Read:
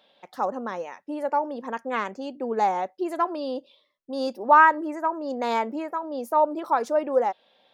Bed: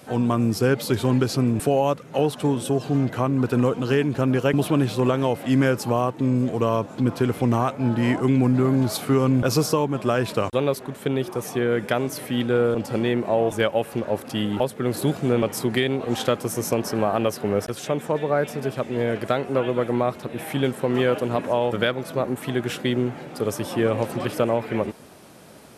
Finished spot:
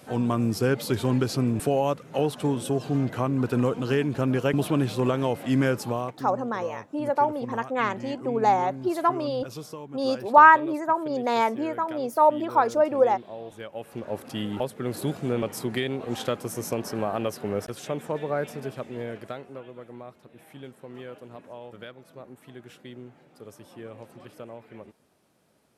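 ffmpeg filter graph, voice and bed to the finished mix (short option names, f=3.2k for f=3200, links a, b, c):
-filter_complex "[0:a]adelay=5850,volume=2dB[a];[1:a]volume=8.5dB,afade=t=out:st=5.74:d=0.55:silence=0.188365,afade=t=in:st=13.67:d=0.55:silence=0.251189,afade=t=out:st=18.44:d=1.2:silence=0.199526[b];[a][b]amix=inputs=2:normalize=0"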